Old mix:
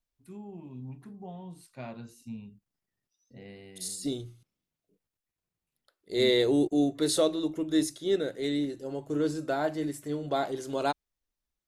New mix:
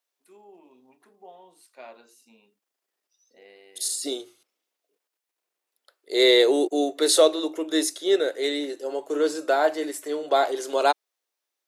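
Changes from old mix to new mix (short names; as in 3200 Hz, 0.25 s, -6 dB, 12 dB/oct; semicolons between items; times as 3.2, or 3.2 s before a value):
second voice +9.0 dB; master: add HPF 390 Hz 24 dB/oct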